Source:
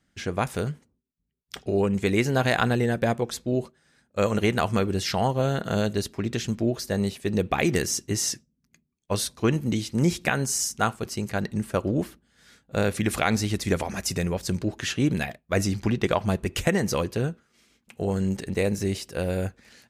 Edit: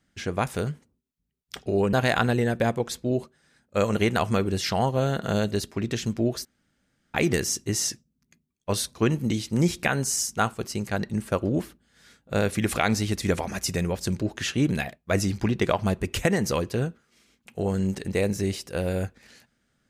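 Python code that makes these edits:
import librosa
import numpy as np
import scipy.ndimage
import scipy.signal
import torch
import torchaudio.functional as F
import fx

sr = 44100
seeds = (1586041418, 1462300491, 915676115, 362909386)

y = fx.edit(x, sr, fx.cut(start_s=1.93, length_s=0.42),
    fx.room_tone_fill(start_s=6.87, length_s=0.69), tone=tone)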